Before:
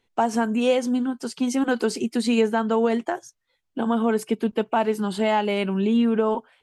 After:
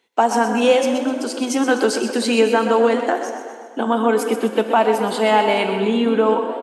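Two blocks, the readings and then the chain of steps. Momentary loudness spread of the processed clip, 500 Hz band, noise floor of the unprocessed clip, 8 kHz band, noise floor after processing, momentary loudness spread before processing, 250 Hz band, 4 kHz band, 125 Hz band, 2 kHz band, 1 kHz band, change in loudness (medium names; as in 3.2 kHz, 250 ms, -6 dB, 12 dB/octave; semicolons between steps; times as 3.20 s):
7 LU, +6.5 dB, -74 dBFS, +7.5 dB, -37 dBFS, 6 LU, +1.5 dB, +7.5 dB, no reading, +7.5 dB, +7.5 dB, +5.0 dB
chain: high-pass 310 Hz 12 dB/octave; frequency-shifting echo 126 ms, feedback 52%, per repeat +31 Hz, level -10 dB; plate-style reverb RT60 2.1 s, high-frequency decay 0.8×, DRR 8.5 dB; trim +6.5 dB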